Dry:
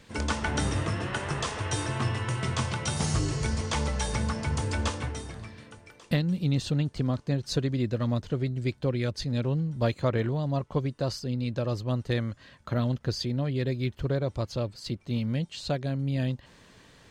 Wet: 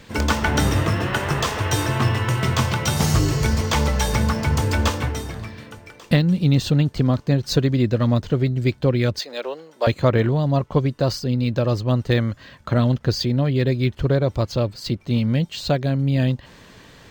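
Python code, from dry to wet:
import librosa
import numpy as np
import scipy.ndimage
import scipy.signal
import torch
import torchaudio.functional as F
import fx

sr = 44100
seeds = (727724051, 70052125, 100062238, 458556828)

y = fx.highpass(x, sr, hz=450.0, slope=24, at=(9.19, 9.87))
y = np.interp(np.arange(len(y)), np.arange(len(y))[::2], y[::2])
y = y * librosa.db_to_amplitude(9.0)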